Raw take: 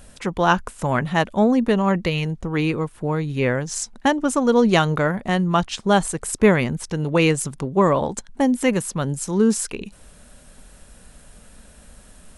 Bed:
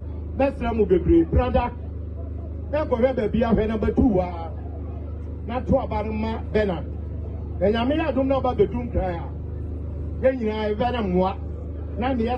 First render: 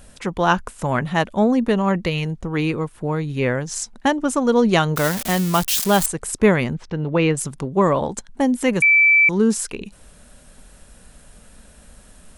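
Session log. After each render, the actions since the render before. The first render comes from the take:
0:04.96–0:06.06: spike at every zero crossing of −13 dBFS
0:06.74–0:07.37: high-frequency loss of the air 210 metres
0:08.82–0:09.29: beep over 2,320 Hz −10 dBFS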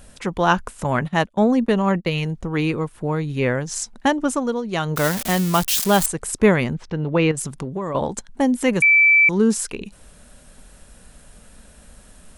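0:00.84–0:02.21: noise gate −27 dBFS, range −21 dB
0:04.27–0:05.03: duck −12.5 dB, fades 0.36 s
0:07.31–0:07.95: downward compressor 10 to 1, threshold −22 dBFS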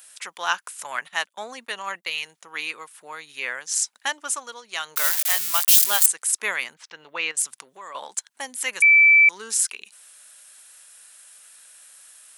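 high-pass filter 1,500 Hz 12 dB per octave
high-shelf EQ 7,800 Hz +9.5 dB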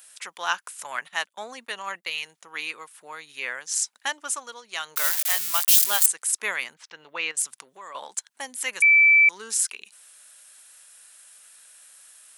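level −2 dB

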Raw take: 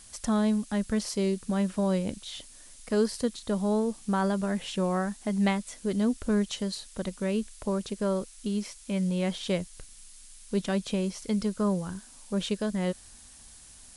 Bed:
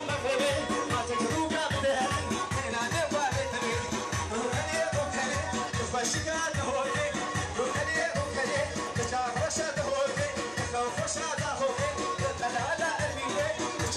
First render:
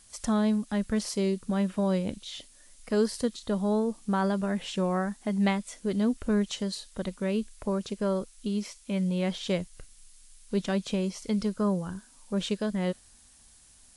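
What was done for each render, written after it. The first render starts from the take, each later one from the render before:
noise reduction from a noise print 6 dB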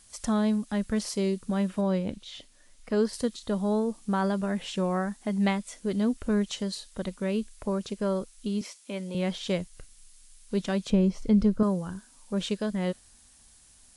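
0:01.81–0:03.13: low-pass filter 3,800 Hz 6 dB per octave
0:08.61–0:09.15: high-pass filter 240 Hz 24 dB per octave
0:10.90–0:11.63: spectral tilt −3 dB per octave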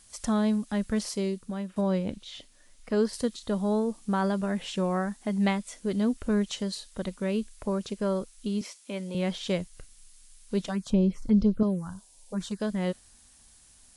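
0:01.01–0:01.76: fade out, to −10.5 dB
0:10.67–0:12.60: phaser swept by the level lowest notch 180 Hz, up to 2,000 Hz, full sweep at −17.5 dBFS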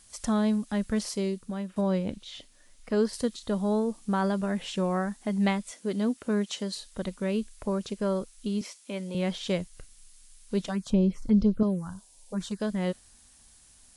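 0:05.71–0:06.74: high-pass filter 180 Hz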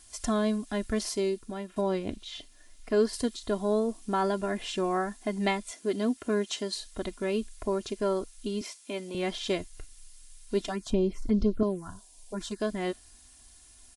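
notch filter 1,200 Hz, Q 15
comb filter 2.9 ms, depth 65%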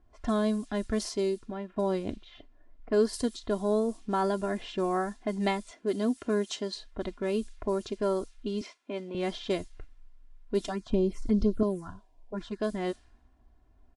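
low-pass that shuts in the quiet parts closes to 700 Hz, open at −25 dBFS
dynamic equaliser 2,400 Hz, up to −4 dB, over −47 dBFS, Q 1.2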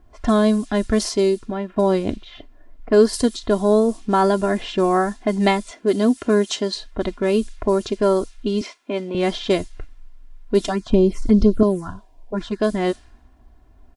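level +11 dB

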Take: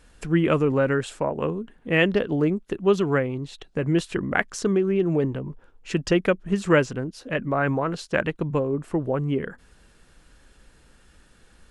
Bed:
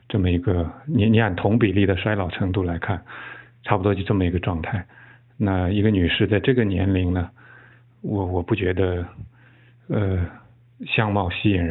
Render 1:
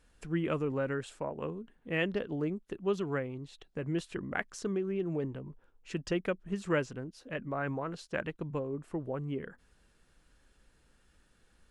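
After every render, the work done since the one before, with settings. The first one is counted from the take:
level −11.5 dB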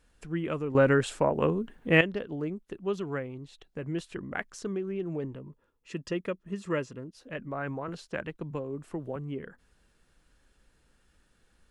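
0:00.75–0:02.01: clip gain +11.5 dB
0:05.35–0:07.15: notch comb filter 760 Hz
0:07.88–0:09.16: multiband upward and downward compressor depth 40%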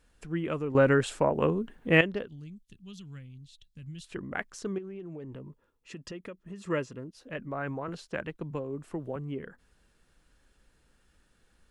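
0:02.28–0:04.04: drawn EQ curve 100 Hz 0 dB, 240 Hz −10 dB, 360 Hz −26 dB, 750 Hz −27 dB, 2,000 Hz −16 dB, 3,300 Hz −1 dB
0:04.78–0:06.67: downward compressor 5 to 1, threshold −38 dBFS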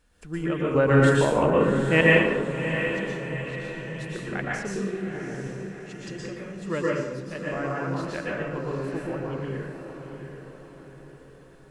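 feedback delay with all-pass diffusion 733 ms, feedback 49%, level −8.5 dB
dense smooth reverb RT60 0.86 s, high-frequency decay 0.7×, pre-delay 105 ms, DRR −4.5 dB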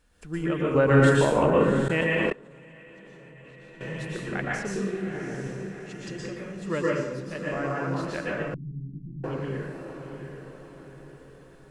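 0:01.88–0:03.81: output level in coarse steps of 24 dB
0:08.54–0:09.24: inverse Chebyshev low-pass filter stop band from 520 Hz, stop band 50 dB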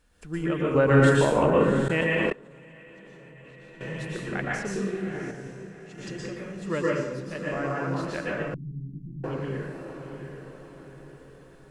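0:05.31–0:05.98: tuned comb filter 55 Hz, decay 0.64 s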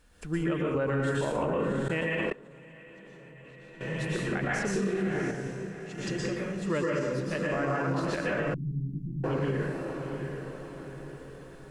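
speech leveller within 4 dB 0.5 s
brickwall limiter −20.5 dBFS, peak gain reduction 9 dB

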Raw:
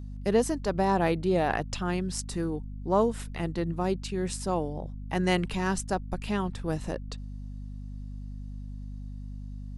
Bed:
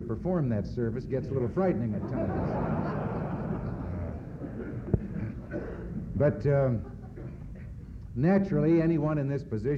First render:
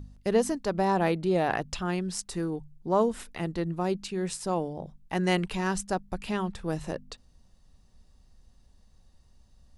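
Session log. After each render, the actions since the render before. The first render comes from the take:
hum removal 50 Hz, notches 5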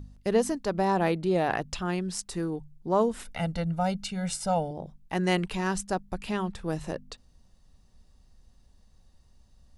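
0:03.25–0:04.71: comb filter 1.4 ms, depth 98%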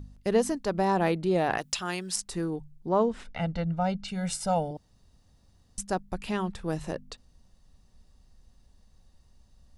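0:01.58–0:02.16: spectral tilt +3 dB per octave
0:02.89–0:04.08: high-frequency loss of the air 110 metres
0:04.77–0:05.78: fill with room tone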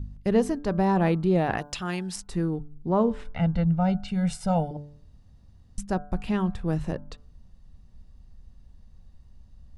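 bass and treble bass +9 dB, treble −7 dB
hum removal 146.2 Hz, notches 11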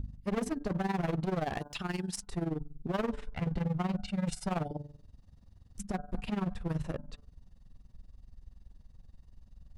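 hard clipping −26.5 dBFS, distortion −7 dB
amplitude modulation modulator 21 Hz, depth 70%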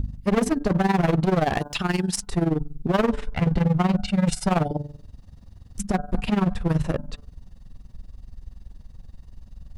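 level +11.5 dB

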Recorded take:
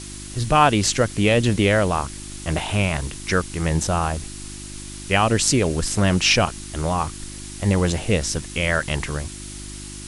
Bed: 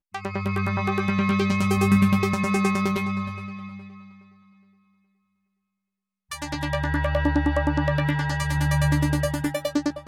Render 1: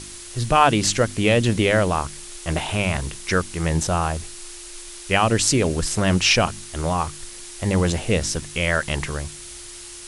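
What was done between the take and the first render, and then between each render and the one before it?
hum removal 50 Hz, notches 6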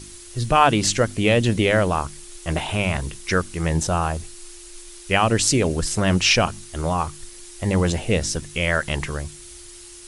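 broadband denoise 6 dB, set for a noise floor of −39 dBFS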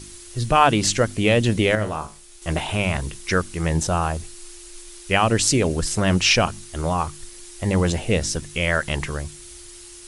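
0:01.75–0:02.42: tuned comb filter 53 Hz, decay 0.32 s, mix 80%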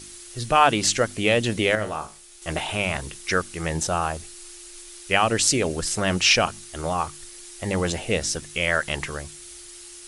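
low-shelf EQ 270 Hz −9 dB
notch filter 1,000 Hz, Q 16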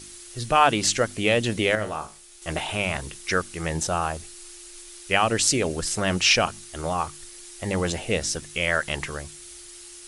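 level −1 dB

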